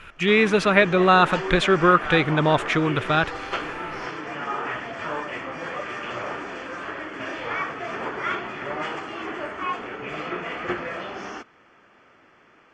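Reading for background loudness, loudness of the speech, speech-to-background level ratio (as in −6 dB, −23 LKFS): −30.5 LKFS, −19.5 LKFS, 11.0 dB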